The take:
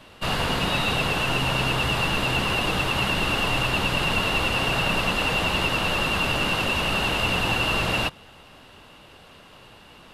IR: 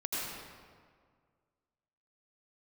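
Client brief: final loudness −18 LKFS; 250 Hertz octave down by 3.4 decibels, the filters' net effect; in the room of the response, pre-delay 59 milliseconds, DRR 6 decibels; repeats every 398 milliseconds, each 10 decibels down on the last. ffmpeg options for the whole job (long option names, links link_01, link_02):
-filter_complex "[0:a]equalizer=frequency=250:width_type=o:gain=-5,aecho=1:1:398|796|1194|1592:0.316|0.101|0.0324|0.0104,asplit=2[link_01][link_02];[1:a]atrim=start_sample=2205,adelay=59[link_03];[link_02][link_03]afir=irnorm=-1:irlink=0,volume=-11dB[link_04];[link_01][link_04]amix=inputs=2:normalize=0,volume=3.5dB"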